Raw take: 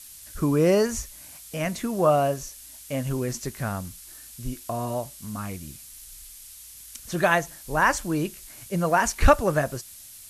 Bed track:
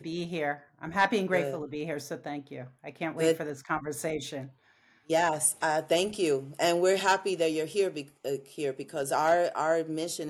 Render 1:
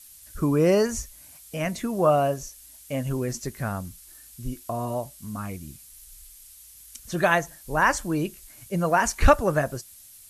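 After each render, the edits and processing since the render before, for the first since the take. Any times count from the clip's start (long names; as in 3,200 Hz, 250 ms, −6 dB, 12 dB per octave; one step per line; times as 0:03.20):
broadband denoise 6 dB, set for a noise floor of −45 dBFS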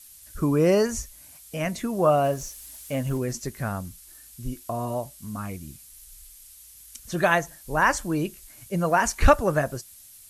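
0:02.24–0:03.18: mu-law and A-law mismatch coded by mu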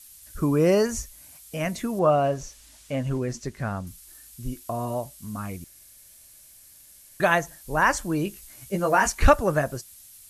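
0:01.99–0:03.87: high-frequency loss of the air 64 metres
0:05.64–0:07.20: fill with room tone
0:08.25–0:09.10: double-tracking delay 15 ms −4 dB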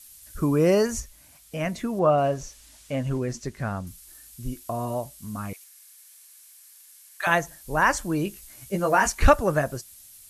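0:01.00–0:02.18: high-shelf EQ 5,900 Hz −7.5 dB
0:05.53–0:07.27: high-pass filter 900 Hz 24 dB per octave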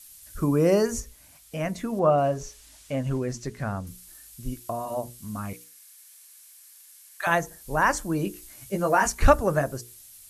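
dynamic equaliser 2,800 Hz, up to −4 dB, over −41 dBFS, Q 0.82
mains-hum notches 60/120/180/240/300/360/420/480 Hz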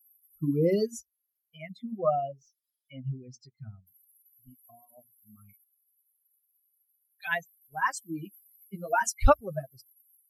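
spectral dynamics exaggerated over time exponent 3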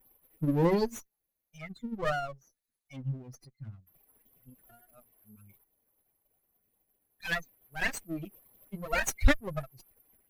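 lower of the sound and its delayed copy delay 0.47 ms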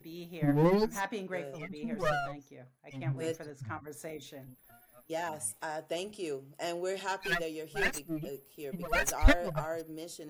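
mix in bed track −10.5 dB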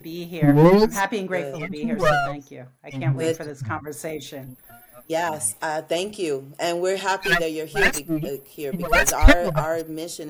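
level +12 dB
brickwall limiter −1 dBFS, peak gain reduction 3 dB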